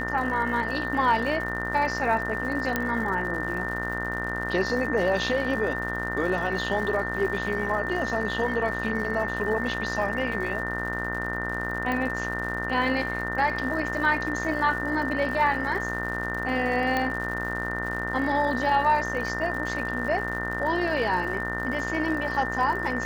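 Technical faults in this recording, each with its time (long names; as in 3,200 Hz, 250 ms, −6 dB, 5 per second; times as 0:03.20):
mains buzz 60 Hz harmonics 33 −33 dBFS
surface crackle 130 per second −35 dBFS
whistle 1,800 Hz −31 dBFS
0:02.76: click −10 dBFS
0:11.92: click −17 dBFS
0:16.97: click −13 dBFS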